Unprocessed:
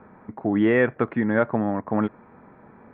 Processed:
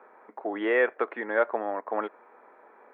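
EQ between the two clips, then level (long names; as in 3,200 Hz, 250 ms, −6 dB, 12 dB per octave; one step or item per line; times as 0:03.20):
high-pass filter 410 Hz 24 dB per octave
−1.5 dB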